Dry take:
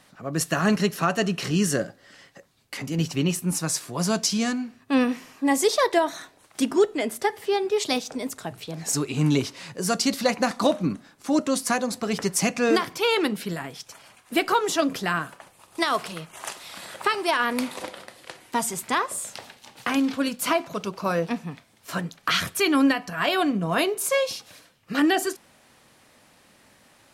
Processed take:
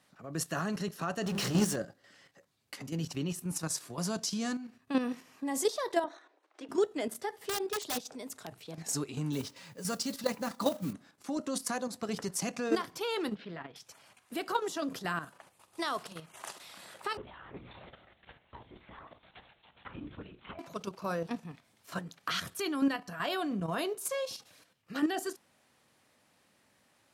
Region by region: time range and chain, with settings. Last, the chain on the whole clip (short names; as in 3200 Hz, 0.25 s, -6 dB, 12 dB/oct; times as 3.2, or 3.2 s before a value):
1.26–1.76 notches 50/100/150/200/250/300/350/400 Hz + power-law curve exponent 0.5
6.04–6.69 elliptic high-pass 310 Hz + tape spacing loss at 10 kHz 24 dB
7.29–8.78 low shelf 170 Hz -4.5 dB + wrapped overs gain 17.5 dB
9.32–10.93 notch comb 360 Hz + modulation noise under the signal 18 dB
13.35–13.76 LPF 3600 Hz 24 dB/oct + low shelf 150 Hz -7 dB + Doppler distortion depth 0.12 ms
17.17–20.59 compressor 16:1, threshold -28 dBFS + LPC vocoder at 8 kHz whisper + resonator 60 Hz, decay 0.17 s
whole clip: HPF 61 Hz; dynamic EQ 2300 Hz, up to -5 dB, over -44 dBFS, Q 2.6; level quantiser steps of 9 dB; gain -6 dB